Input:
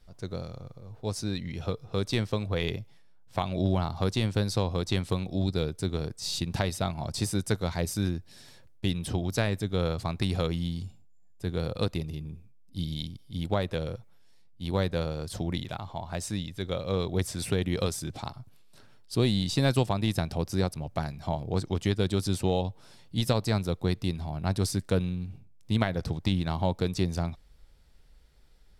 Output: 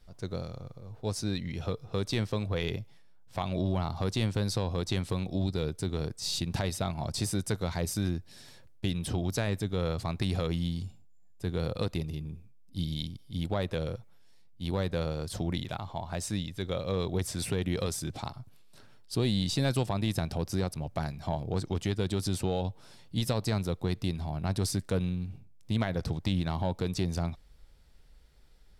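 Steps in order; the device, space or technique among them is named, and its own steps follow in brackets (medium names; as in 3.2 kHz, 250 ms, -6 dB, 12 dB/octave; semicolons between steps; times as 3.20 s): soft clipper into limiter (saturation -13.5 dBFS, distortion -24 dB; peak limiter -19.5 dBFS, peak gain reduction 4.5 dB)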